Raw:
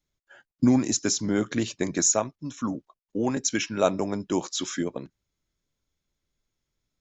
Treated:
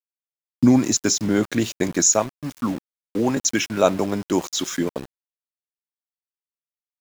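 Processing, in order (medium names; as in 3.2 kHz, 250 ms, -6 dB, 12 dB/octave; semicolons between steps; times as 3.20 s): small samples zeroed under -37 dBFS; trim +5 dB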